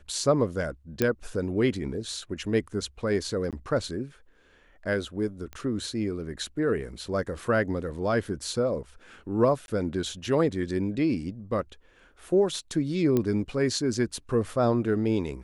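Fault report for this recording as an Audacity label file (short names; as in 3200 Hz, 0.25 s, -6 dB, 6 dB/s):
1.020000	1.020000	pop -10 dBFS
3.510000	3.530000	gap 17 ms
5.530000	5.530000	pop -25 dBFS
9.660000	9.680000	gap 21 ms
13.170000	13.170000	pop -13 dBFS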